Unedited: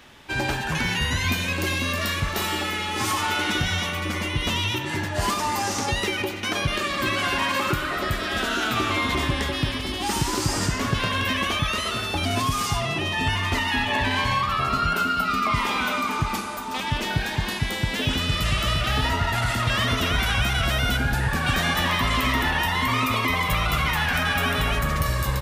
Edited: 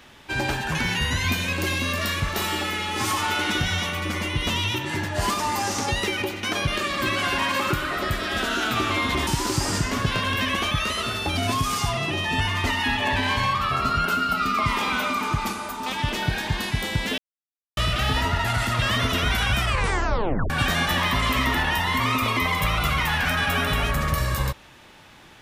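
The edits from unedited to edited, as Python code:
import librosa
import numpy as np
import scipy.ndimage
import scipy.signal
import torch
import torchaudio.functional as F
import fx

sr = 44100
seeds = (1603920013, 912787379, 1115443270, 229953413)

y = fx.edit(x, sr, fx.cut(start_s=9.27, length_s=0.88),
    fx.silence(start_s=18.06, length_s=0.59),
    fx.tape_stop(start_s=20.44, length_s=0.94), tone=tone)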